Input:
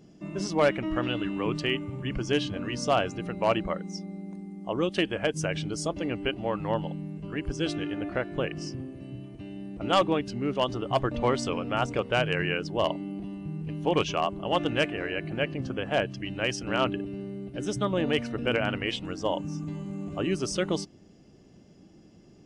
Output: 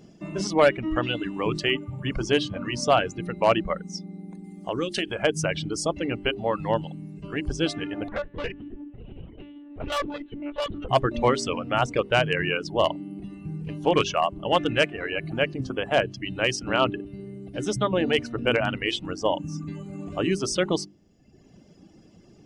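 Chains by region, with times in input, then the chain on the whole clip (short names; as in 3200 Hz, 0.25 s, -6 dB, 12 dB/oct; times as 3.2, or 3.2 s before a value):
4.44–5.23 high shelf 3200 Hz +7.5 dB + compressor 3:1, threshold -28 dBFS
8.08–10.89 monotone LPC vocoder at 8 kHz 290 Hz + upward compressor, threshold -43 dBFS + tube stage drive 27 dB, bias 0.25
whole clip: reverb removal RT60 1 s; notches 50/100/150/200/250/300/350/400 Hz; gain +5 dB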